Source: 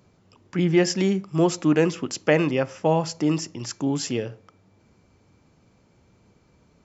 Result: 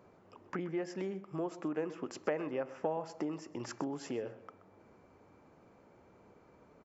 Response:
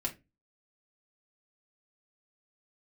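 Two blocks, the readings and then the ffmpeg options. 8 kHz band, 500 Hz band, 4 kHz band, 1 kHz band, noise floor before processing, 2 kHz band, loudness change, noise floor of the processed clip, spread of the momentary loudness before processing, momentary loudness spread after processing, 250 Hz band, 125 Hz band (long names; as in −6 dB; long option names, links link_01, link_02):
can't be measured, −14.0 dB, −21.5 dB, −12.5 dB, −61 dBFS, −17.0 dB, −15.5 dB, −63 dBFS, 8 LU, 7 LU, −16.5 dB, −21.0 dB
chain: -filter_complex "[0:a]equalizer=frequency=3400:width=0.71:gain=-9,acompressor=threshold=-34dB:ratio=10,bass=frequency=250:gain=-14,treble=frequency=4000:gain=-14,asplit=2[link_01][link_02];[link_02]adelay=127,lowpass=frequency=4800:poles=1,volume=-15.5dB,asplit=2[link_03][link_04];[link_04]adelay=127,lowpass=frequency=4800:poles=1,volume=0.35,asplit=2[link_05][link_06];[link_06]adelay=127,lowpass=frequency=4800:poles=1,volume=0.35[link_07];[link_01][link_03][link_05][link_07]amix=inputs=4:normalize=0,volume=4.5dB"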